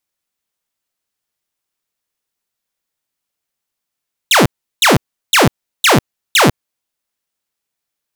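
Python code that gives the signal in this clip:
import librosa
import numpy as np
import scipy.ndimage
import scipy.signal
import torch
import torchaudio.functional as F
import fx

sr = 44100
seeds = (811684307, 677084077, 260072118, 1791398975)

y = fx.laser_zaps(sr, level_db=-4, start_hz=4100.0, end_hz=95.0, length_s=0.15, wave='saw', shots=5, gap_s=0.36)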